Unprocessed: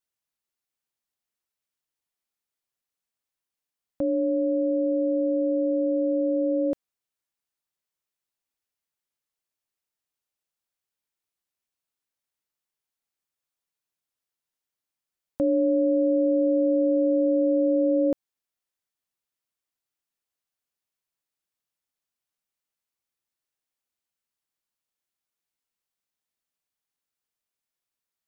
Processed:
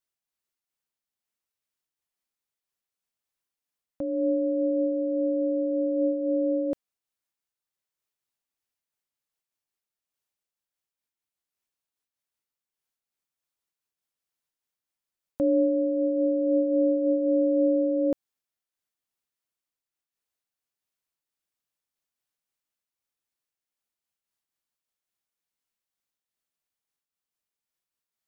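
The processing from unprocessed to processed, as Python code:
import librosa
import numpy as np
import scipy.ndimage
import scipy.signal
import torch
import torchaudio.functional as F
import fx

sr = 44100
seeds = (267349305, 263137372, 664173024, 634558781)

y = fx.am_noise(x, sr, seeds[0], hz=5.7, depth_pct=65)
y = F.gain(torch.from_numpy(y), 1.5).numpy()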